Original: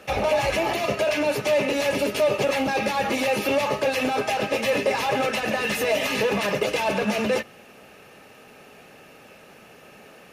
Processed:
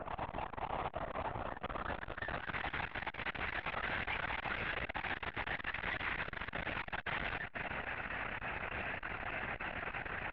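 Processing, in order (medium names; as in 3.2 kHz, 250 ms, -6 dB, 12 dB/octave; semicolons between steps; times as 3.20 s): high-pass 420 Hz 24 dB/octave; compression 6:1, threshold -27 dBFS, peak gain reduction 10 dB; wavefolder -33 dBFS; overdrive pedal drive 13 dB, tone 2.5 kHz, clips at -33 dBFS; low-pass sweep 930 Hz -> 2 kHz, 1.43–2.61 s; hard clipper -37.5 dBFS, distortion -10 dB; on a send: delay 461 ms -11 dB; on the sum: LPC vocoder at 8 kHz whisper; transformer saturation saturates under 400 Hz; trim +3.5 dB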